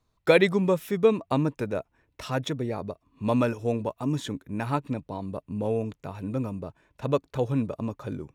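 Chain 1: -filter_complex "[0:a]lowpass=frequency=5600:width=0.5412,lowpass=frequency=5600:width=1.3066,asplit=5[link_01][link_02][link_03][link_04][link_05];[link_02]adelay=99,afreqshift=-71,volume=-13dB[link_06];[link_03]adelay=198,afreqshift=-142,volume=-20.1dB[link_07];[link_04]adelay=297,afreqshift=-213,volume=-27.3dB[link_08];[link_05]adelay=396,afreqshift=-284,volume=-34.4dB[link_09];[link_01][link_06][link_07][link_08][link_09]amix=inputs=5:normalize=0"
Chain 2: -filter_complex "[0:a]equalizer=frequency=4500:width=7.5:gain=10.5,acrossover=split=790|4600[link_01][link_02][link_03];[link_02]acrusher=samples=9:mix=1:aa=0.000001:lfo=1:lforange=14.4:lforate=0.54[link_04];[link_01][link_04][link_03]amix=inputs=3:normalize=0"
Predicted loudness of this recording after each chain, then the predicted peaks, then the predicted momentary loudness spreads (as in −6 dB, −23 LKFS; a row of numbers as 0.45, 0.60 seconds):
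−27.5, −28.0 LKFS; −6.5, −6.5 dBFS; 13, 13 LU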